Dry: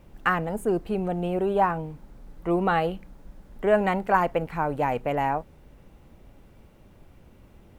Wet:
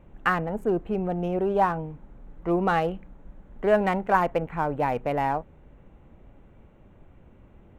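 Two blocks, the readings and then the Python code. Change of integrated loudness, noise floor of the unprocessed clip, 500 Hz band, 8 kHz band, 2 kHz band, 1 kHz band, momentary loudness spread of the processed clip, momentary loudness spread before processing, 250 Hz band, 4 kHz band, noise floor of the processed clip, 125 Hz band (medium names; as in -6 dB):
0.0 dB, -54 dBFS, 0.0 dB, no reading, -0.5 dB, 0.0 dB, 8 LU, 8 LU, 0.0 dB, -1.5 dB, -54 dBFS, 0.0 dB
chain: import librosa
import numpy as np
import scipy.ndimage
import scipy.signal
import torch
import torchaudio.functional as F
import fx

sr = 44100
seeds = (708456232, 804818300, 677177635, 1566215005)

y = fx.wiener(x, sr, points=9)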